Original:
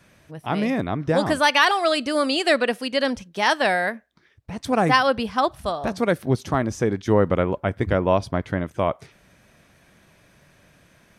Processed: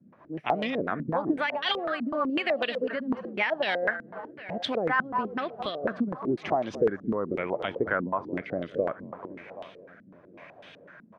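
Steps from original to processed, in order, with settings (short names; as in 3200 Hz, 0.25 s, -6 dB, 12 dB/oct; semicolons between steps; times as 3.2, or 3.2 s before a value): low shelf 460 Hz -5.5 dB; frequency-shifting echo 0.216 s, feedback 32%, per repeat -41 Hz, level -14.5 dB; limiter -15 dBFS, peak gain reduction 10.5 dB; HPF 170 Hz 12 dB/oct; feedback echo 0.774 s, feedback 50%, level -22 dB; rotary speaker horn 7.5 Hz, later 0.7 Hz, at 3.51; compressor 2:1, threshold -38 dBFS, peak gain reduction 9.5 dB; stepped low-pass 8 Hz 230–3300 Hz; gain +4 dB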